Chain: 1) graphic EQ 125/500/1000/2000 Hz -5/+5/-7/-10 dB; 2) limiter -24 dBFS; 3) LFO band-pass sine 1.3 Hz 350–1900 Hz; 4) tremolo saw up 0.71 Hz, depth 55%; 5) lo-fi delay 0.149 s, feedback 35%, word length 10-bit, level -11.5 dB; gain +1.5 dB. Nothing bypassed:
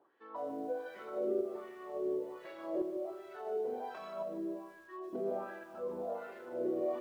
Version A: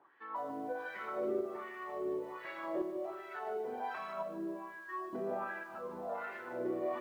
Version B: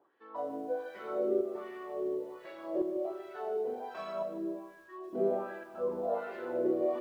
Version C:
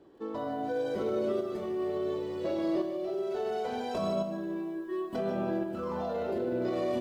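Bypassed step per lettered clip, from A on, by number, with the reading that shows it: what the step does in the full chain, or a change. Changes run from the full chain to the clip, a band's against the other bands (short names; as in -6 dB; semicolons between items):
1, momentary loudness spread change -4 LU; 2, mean gain reduction 3.0 dB; 3, crest factor change -3.5 dB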